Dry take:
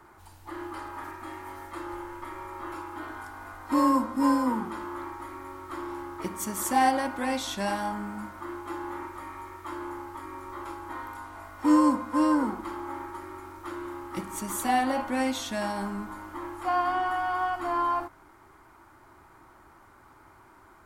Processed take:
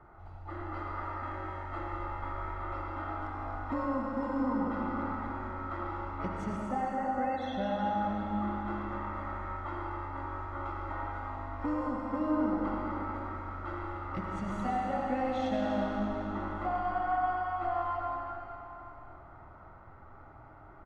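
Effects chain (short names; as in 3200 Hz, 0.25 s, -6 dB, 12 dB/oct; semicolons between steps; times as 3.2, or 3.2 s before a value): comb 1.5 ms, depth 50%; compressor, threshold -31 dBFS, peak gain reduction 14 dB; 6.56–7.86 loudest bins only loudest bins 32; tape spacing loss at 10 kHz 36 dB; darkening echo 0.1 s, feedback 62%, level -11 dB; reverb RT60 3.3 s, pre-delay 45 ms, DRR -1 dB; mismatched tape noise reduction decoder only; gain +1.5 dB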